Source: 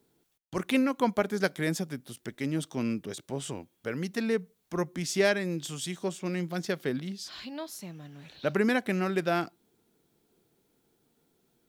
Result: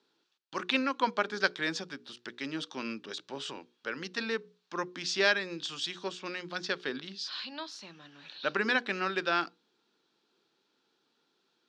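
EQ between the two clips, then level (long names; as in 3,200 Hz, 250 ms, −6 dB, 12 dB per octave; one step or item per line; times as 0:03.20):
loudspeaker in its box 270–4,600 Hz, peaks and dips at 460 Hz −3 dB, 680 Hz −8 dB, 2,100 Hz −9 dB, 3,100 Hz −3 dB
tilt shelving filter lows −7 dB, about 830 Hz
mains-hum notches 60/120/180/240/300/360/420/480 Hz
+2.0 dB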